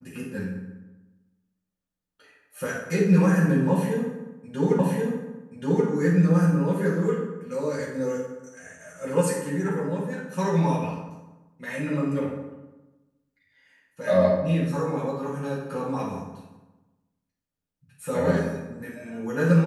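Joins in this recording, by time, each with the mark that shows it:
4.79 repeat of the last 1.08 s

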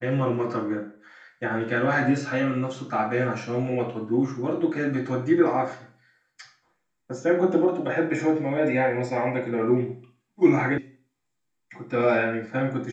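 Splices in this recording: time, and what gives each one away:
10.78 sound cut off

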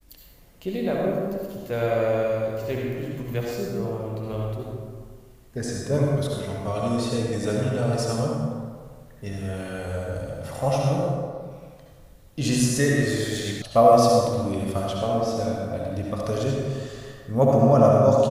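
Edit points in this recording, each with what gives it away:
13.62 sound cut off

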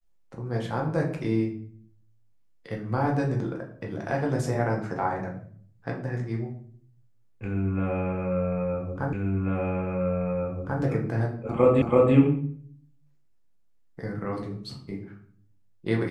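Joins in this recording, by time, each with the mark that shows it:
9.13 repeat of the last 1.69 s
11.82 repeat of the last 0.33 s

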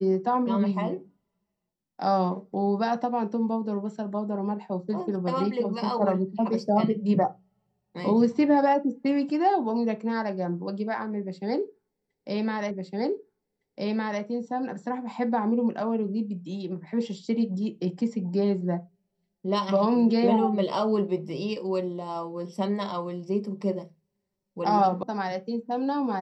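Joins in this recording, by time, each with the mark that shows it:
12.71 repeat of the last 1.51 s
25.03 sound cut off

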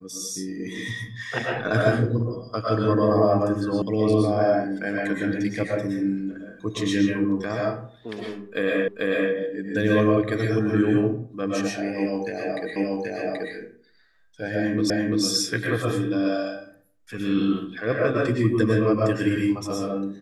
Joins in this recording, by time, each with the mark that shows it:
3.82 sound cut off
8.88 repeat of the last 0.44 s
12.76 repeat of the last 0.78 s
14.9 repeat of the last 0.34 s

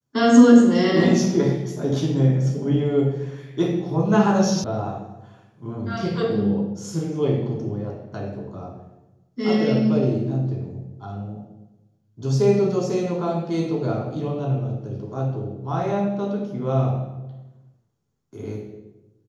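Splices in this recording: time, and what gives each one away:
4.64 sound cut off

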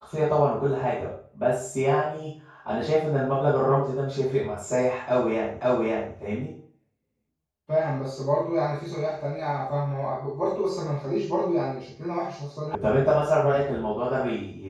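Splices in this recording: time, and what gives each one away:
5.61 repeat of the last 0.54 s
12.75 sound cut off

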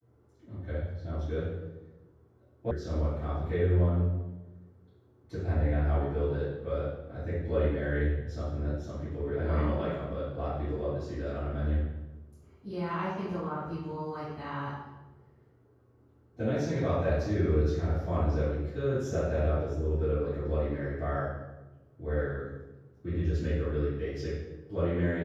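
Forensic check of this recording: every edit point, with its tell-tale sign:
2.71 sound cut off

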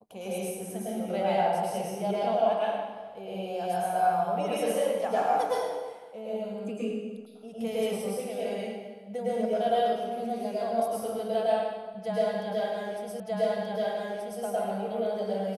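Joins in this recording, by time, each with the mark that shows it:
13.2 repeat of the last 1.23 s

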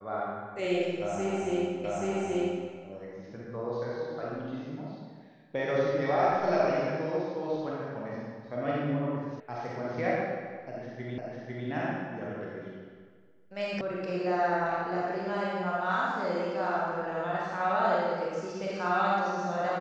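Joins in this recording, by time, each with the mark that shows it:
1.84 repeat of the last 0.83 s
9.4 sound cut off
11.18 repeat of the last 0.5 s
13.81 sound cut off

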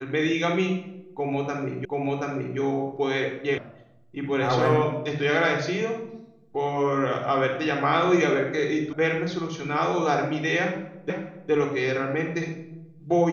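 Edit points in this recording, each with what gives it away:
1.85 repeat of the last 0.73 s
3.58 sound cut off
8.93 sound cut off
11.1 repeat of the last 0.41 s

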